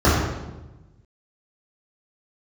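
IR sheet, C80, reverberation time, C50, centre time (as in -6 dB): 3.0 dB, 1.1 s, 0.0 dB, 75 ms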